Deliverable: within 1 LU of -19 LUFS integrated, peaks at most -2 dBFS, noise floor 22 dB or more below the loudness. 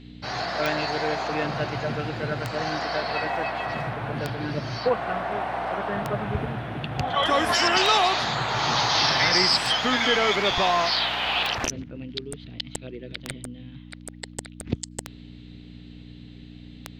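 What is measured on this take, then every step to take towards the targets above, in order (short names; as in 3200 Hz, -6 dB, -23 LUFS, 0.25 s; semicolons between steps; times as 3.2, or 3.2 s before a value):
clicks 10; hum 60 Hz; harmonics up to 300 Hz; hum level -41 dBFS; loudness -24.0 LUFS; peak -8.0 dBFS; loudness target -19.0 LUFS
-> de-click; de-hum 60 Hz, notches 5; gain +5 dB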